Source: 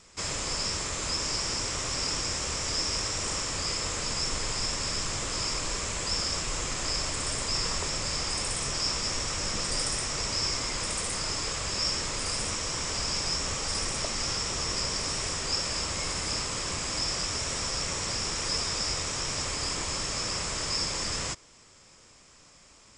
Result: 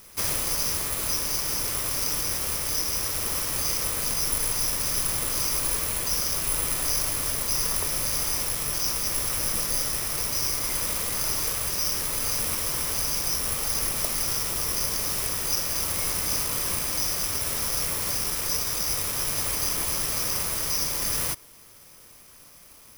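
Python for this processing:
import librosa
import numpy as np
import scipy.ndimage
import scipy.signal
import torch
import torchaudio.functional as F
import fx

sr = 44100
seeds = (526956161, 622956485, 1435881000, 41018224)

y = fx.rider(x, sr, range_db=10, speed_s=0.5)
y = (np.kron(scipy.signal.resample_poly(y, 1, 4), np.eye(4)[0]) * 4)[:len(y)]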